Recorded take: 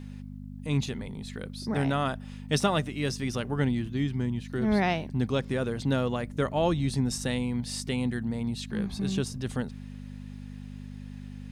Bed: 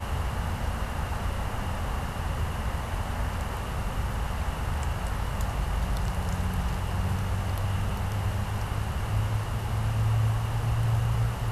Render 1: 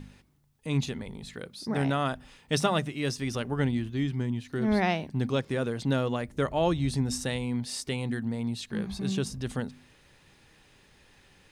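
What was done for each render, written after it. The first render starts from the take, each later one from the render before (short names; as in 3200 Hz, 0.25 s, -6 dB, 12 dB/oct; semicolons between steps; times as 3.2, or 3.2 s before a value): de-hum 50 Hz, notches 5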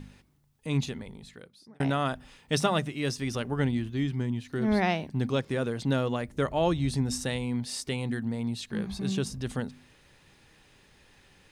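0.76–1.8 fade out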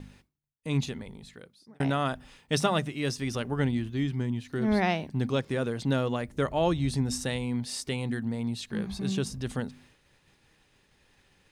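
expander -53 dBFS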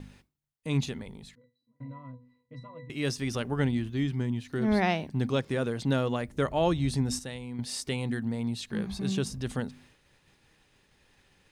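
1.35–2.9 octave resonator B, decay 0.3 s; 7.19–7.59 gain -8 dB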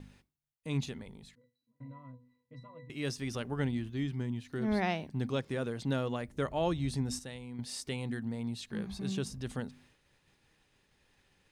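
gain -5.5 dB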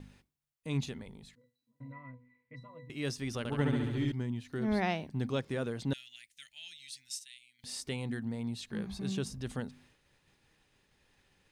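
1.92–2.56 synth low-pass 2200 Hz, resonance Q 7.6; 3.38–4.12 flutter echo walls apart 11.9 m, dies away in 1.3 s; 5.93–7.64 inverse Chebyshev high-pass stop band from 1200 Hz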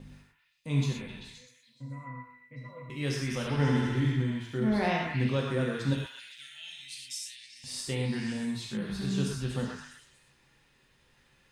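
delay with a stepping band-pass 0.13 s, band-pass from 1300 Hz, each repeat 0.7 oct, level -2 dB; non-linear reverb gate 0.14 s flat, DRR -1.5 dB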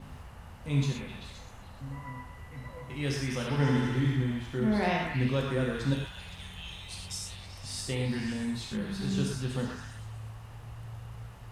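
add bed -17.5 dB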